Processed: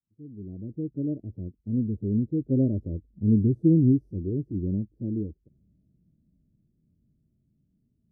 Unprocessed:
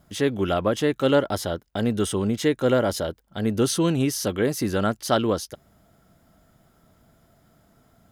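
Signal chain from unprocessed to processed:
fade in at the beginning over 0.88 s
source passing by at 0:03.26, 18 m/s, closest 14 metres
inverse Chebyshev low-pass filter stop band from 1,100 Hz, stop band 60 dB
dynamic equaliser 180 Hz, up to −3 dB, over −37 dBFS, Q 1.1
harmonic and percussive parts rebalanced percussive −14 dB
level +8.5 dB

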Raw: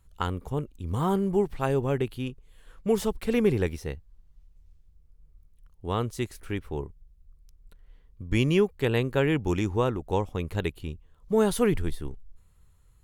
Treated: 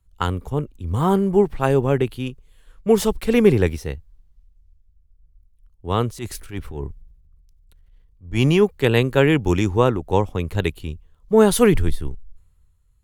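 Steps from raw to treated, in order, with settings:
0:06.09–0:08.63: transient designer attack −10 dB, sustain +6 dB
multiband upward and downward expander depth 40%
level +7.5 dB

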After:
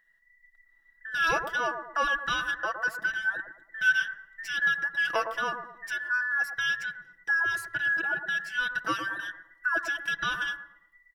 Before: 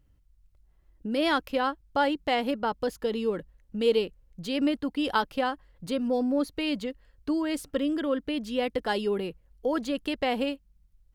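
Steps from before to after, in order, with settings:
frequency inversion band by band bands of 2,000 Hz
comb filter 6 ms
bucket-brigade delay 111 ms, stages 1,024, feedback 39%, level −7.5 dB
on a send at −22 dB: convolution reverb RT60 0.85 s, pre-delay 3 ms
on the sum: level −3.5 dB

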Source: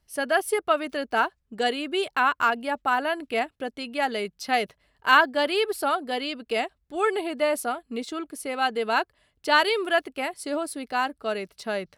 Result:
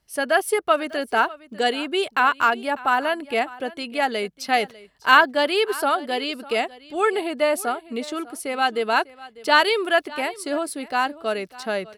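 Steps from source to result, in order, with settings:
low-shelf EQ 90 Hz −8.5 dB
on a send: single-tap delay 598 ms −19.5 dB
on the sum: level +3.5 dB

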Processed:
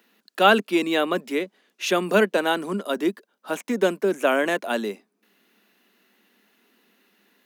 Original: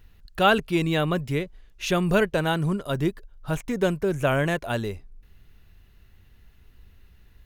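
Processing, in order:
Butterworth high-pass 200 Hz 72 dB per octave
level +3 dB

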